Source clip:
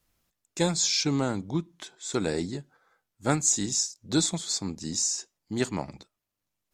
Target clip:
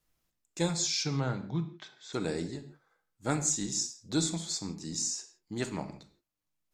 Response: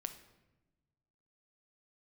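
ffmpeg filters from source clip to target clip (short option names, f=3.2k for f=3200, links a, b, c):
-filter_complex "[0:a]asettb=1/sr,asplit=3[a][b][c];[a]atrim=end=1.044[d];[b]atrim=start=1.04:end=2.13,asetpts=PTS-STARTPTS,afade=t=in:d=0.004:c=qsin,afade=t=out:st=1.086:d=0.004:c=qsin,highpass=100,equalizer=f=130:t=q:w=4:g=8,equalizer=f=300:t=q:w=4:g=-7,equalizer=f=1.6k:t=q:w=4:g=4,lowpass=f=5.3k:w=0.5412,lowpass=f=5.3k:w=1.3066[e];[c]atrim=start=2.126[f];[d][e]acrossfade=d=0.004:c1=hsin:c2=qsin[g];[g][f]acrossfade=d=0.004:c1=qsin:c2=hsin[h];[1:a]atrim=start_sample=2205,afade=t=out:st=0.23:d=0.01,atrim=end_sample=10584[i];[h][i]afir=irnorm=-1:irlink=0,volume=-3dB"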